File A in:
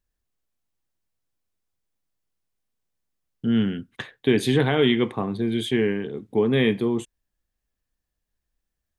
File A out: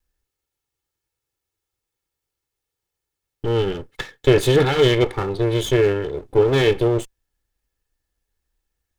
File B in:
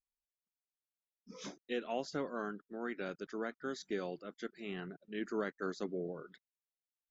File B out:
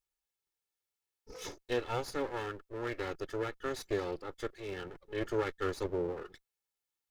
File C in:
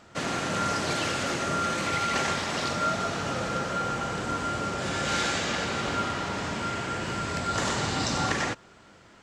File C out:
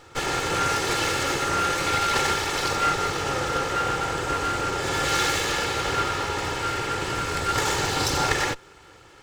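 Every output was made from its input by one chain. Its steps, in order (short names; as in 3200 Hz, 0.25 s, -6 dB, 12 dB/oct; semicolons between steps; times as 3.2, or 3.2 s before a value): minimum comb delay 2.3 ms; gain +5.5 dB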